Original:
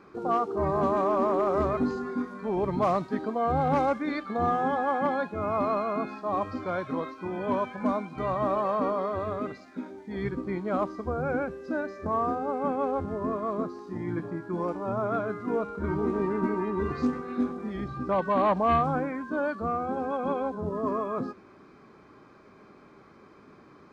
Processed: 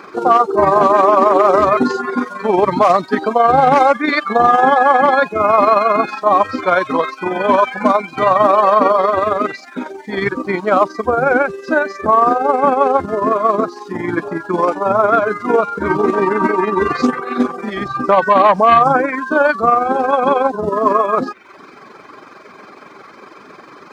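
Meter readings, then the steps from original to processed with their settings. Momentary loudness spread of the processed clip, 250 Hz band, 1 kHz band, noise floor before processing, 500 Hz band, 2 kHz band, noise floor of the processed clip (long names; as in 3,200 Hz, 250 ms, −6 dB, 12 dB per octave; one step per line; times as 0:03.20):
9 LU, +9.5 dB, +16.5 dB, −54 dBFS, +14.0 dB, +18.5 dB, −40 dBFS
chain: reverb reduction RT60 0.62 s
high-pass filter 720 Hz 6 dB per octave
amplitude modulation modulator 22 Hz, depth 30%
boost into a limiter +24 dB
level −1 dB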